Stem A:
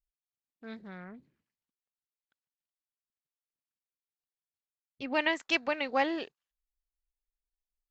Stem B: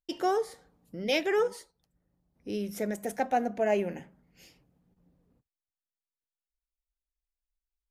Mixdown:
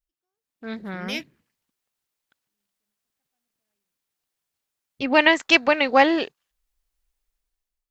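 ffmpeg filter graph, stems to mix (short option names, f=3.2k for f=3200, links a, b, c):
-filter_complex "[0:a]dynaudnorm=f=170:g=7:m=12dB,volume=1dB,asplit=2[a][b];[1:a]equalizer=f=560:t=o:w=1.3:g=-12,volume=0.5dB[c];[b]apad=whole_len=348677[d];[c][d]sidechaingate=range=-55dB:threshold=-39dB:ratio=16:detection=peak[e];[a][e]amix=inputs=2:normalize=0"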